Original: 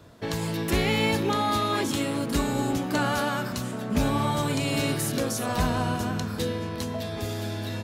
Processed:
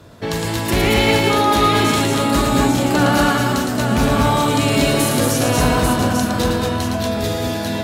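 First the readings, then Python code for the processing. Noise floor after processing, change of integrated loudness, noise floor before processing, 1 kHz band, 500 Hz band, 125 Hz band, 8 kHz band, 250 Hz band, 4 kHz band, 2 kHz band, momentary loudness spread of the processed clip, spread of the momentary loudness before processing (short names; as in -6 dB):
-23 dBFS, +10.0 dB, -33 dBFS, +11.0 dB, +10.5 dB, +9.0 dB, +11.0 dB, +10.0 dB, +10.5 dB, +10.5 dB, 7 LU, 8 LU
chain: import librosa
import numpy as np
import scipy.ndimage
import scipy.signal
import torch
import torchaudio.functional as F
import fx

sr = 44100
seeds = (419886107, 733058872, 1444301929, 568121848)

y = fx.clip_asym(x, sr, top_db=-20.0, bottom_db=-18.5)
y = fx.echo_multitap(y, sr, ms=(41, 112, 222, 238, 844), db=(-9.0, -4.5, -6.5, -4.0, -4.5))
y = y * librosa.db_to_amplitude(7.0)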